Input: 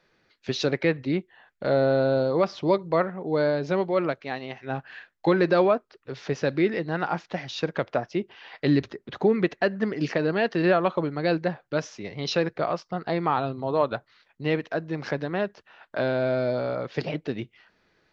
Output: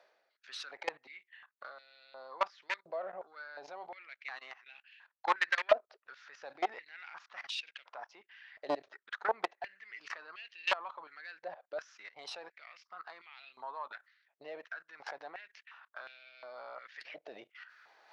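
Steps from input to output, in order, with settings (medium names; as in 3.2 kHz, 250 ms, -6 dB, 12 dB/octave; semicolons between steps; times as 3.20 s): level held to a coarse grid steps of 19 dB; Chebyshev shaper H 3 -14 dB, 5 -20 dB, 6 -18 dB, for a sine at -9.5 dBFS; reverse; upward compressor, threshold -45 dBFS; reverse; step-sequenced high-pass 2.8 Hz 640–2600 Hz; trim -5 dB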